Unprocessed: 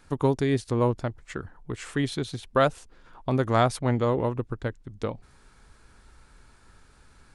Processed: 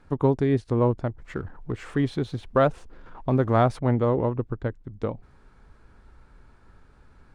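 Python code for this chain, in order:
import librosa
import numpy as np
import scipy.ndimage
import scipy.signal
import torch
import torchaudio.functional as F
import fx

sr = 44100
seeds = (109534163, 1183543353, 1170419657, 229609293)

y = fx.law_mismatch(x, sr, coded='mu', at=(1.19, 3.8))
y = fx.lowpass(y, sr, hz=1100.0, slope=6)
y = y * librosa.db_to_amplitude(2.5)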